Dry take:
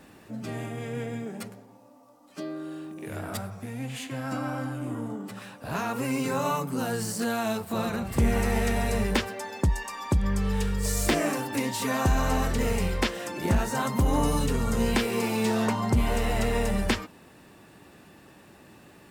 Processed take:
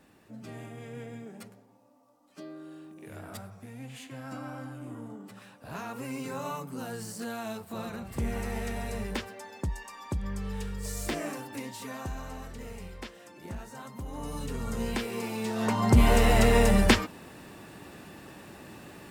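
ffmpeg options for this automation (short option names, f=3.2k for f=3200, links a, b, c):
-af "volume=12.5dB,afade=t=out:st=11.3:d=1.03:silence=0.421697,afade=t=in:st=14.13:d=0.55:silence=0.354813,afade=t=in:st=15.55:d=0.48:silence=0.251189"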